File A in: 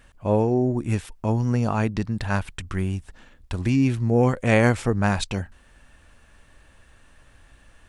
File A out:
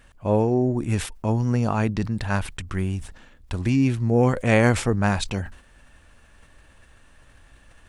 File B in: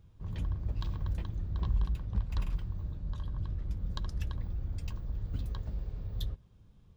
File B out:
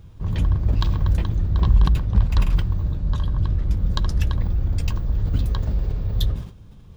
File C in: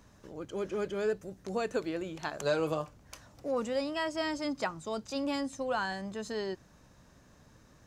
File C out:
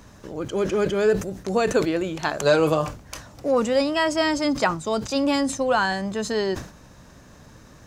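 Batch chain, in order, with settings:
decay stretcher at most 120 dB/s; normalise loudness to -23 LUFS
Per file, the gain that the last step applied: 0.0 dB, +14.0 dB, +11.5 dB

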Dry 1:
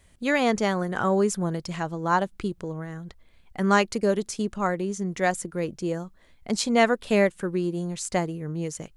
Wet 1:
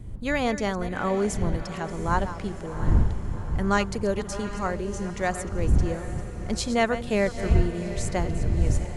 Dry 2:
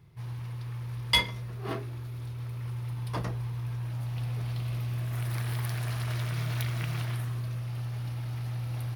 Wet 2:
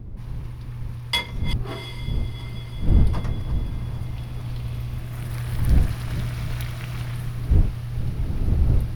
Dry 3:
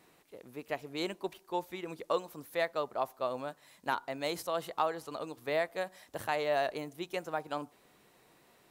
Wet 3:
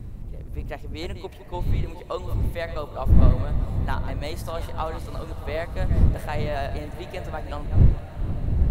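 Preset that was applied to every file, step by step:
chunks repeated in reverse 222 ms, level -12 dB; wind noise 84 Hz -24 dBFS; echo that smears into a reverb 726 ms, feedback 56%, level -12 dB; normalise loudness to -27 LUFS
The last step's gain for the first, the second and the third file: -3.0 dB, 0.0 dB, +1.0 dB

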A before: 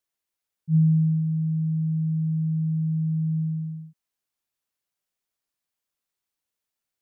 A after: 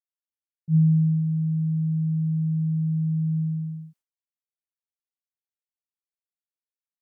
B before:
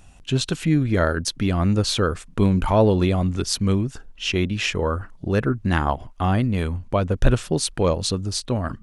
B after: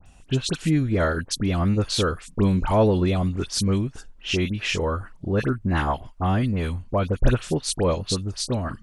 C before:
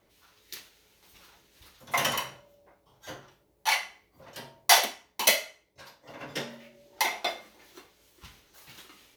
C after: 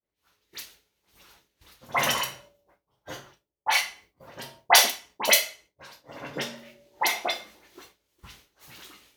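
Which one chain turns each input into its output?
phase dispersion highs, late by 62 ms, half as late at 2.2 kHz; expander -52 dBFS; normalise loudness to -24 LUFS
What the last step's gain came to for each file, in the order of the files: +0.5 dB, -2.0 dB, +3.0 dB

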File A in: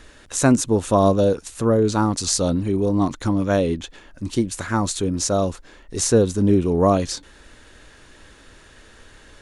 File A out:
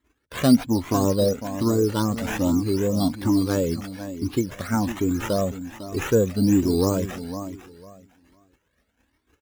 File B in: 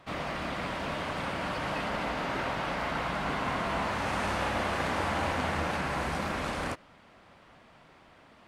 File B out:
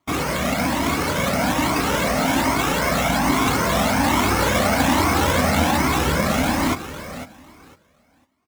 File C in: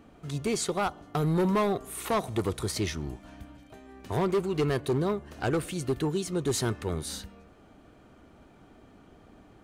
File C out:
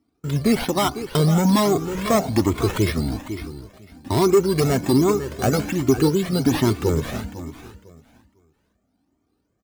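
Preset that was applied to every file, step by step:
high-pass 50 Hz 24 dB/octave; gate -45 dBFS, range -28 dB; treble shelf 4.2 kHz -7.5 dB; in parallel at -1 dB: compression, threshold -27 dBFS; on the sum: small resonant body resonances 260/2200 Hz, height 9 dB, ringing for 30 ms; decimation with a swept rate 8×, swing 60% 2.7 Hz; on a send: feedback delay 502 ms, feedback 21%, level -12 dB; on the sum: Shepard-style flanger rising 1.2 Hz; peak normalisation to -6 dBFS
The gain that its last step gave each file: -2.5 dB, +10.0 dB, +8.0 dB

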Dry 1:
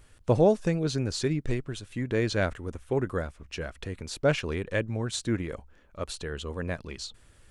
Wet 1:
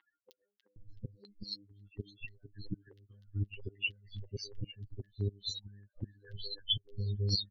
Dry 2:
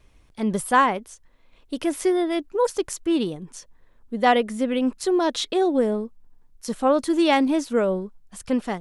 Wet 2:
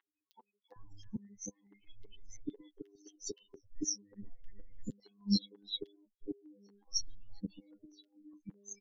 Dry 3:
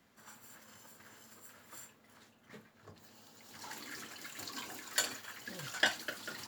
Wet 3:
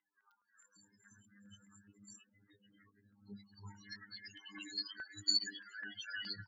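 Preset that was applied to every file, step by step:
dynamic bell 5.6 kHz, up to +3 dB, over -49 dBFS, Q 3.6; resampled via 16 kHz; in parallel at -0.5 dB: compression, threshold -29 dBFS; on the sum: peak limiter -16.5 dBFS; loudest bins only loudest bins 8; robot voice 101 Hz; inverted gate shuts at -23 dBFS, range -30 dB; static phaser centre 2.4 kHz, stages 6; flange 0.52 Hz, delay 6.1 ms, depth 4.9 ms, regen +10%; resonant high shelf 1.8 kHz +10.5 dB, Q 3; three bands offset in time mids, highs, lows 310/760 ms, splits 590/1800 Hz; step-sequenced notch 4.8 Hz 530–4200 Hz; trim +5 dB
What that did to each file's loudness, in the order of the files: -10.0 LU, -18.0 LU, -1.0 LU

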